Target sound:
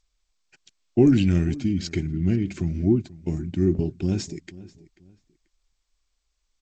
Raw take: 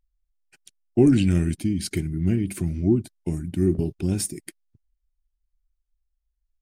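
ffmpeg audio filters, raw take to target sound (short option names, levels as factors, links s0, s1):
-filter_complex "[0:a]asplit=2[s0][s1];[s1]adelay=487,lowpass=f=3100:p=1,volume=0.112,asplit=2[s2][s3];[s3]adelay=487,lowpass=f=3100:p=1,volume=0.29[s4];[s2][s4]amix=inputs=2:normalize=0[s5];[s0][s5]amix=inputs=2:normalize=0" -ar 16000 -c:a g722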